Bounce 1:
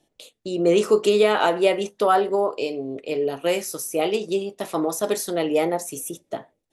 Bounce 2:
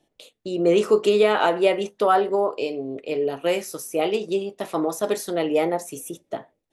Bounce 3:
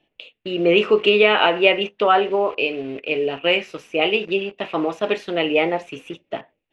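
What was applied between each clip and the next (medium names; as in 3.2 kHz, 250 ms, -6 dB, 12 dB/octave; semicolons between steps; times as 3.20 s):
tone controls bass -1 dB, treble -5 dB
in parallel at -10 dB: bit crusher 6-bit; on the sum: resonant low-pass 2.7 kHz, resonance Q 4.9; trim -1 dB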